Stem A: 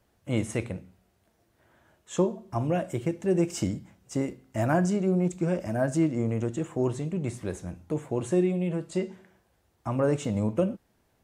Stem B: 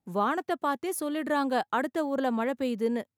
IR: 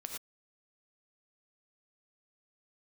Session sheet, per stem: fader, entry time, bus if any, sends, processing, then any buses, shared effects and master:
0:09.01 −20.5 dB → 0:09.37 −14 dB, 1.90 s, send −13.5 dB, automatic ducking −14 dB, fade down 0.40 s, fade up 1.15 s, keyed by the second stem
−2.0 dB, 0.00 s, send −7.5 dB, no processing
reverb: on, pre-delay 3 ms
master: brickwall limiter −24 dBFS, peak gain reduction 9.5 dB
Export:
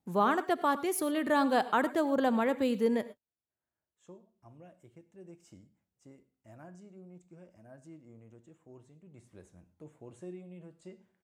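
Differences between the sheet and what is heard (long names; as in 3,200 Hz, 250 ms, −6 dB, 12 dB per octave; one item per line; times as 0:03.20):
stem A −20.5 dB → −28.0 dB
master: missing brickwall limiter −24 dBFS, peak gain reduction 9.5 dB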